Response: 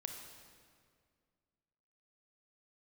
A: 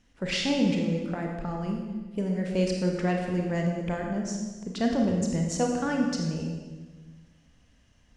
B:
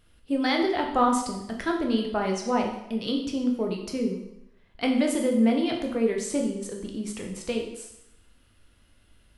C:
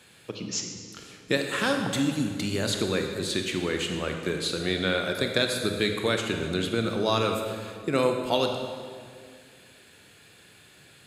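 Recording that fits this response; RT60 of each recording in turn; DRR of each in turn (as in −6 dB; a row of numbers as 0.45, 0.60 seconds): C; 1.3, 0.80, 2.1 seconds; 0.5, 1.0, 3.5 decibels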